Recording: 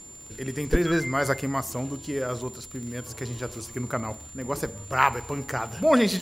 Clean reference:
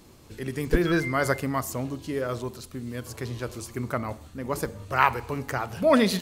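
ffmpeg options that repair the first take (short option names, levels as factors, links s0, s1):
-af "adeclick=t=4,bandreject=f=7200:w=30"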